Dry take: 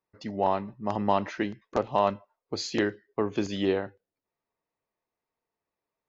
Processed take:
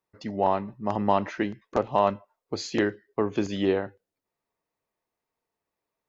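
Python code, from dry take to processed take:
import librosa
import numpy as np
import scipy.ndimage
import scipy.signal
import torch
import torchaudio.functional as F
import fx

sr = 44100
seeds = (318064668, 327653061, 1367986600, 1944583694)

y = fx.dynamic_eq(x, sr, hz=4500.0, q=1.0, threshold_db=-49.0, ratio=4.0, max_db=-4)
y = y * 10.0 ** (2.0 / 20.0)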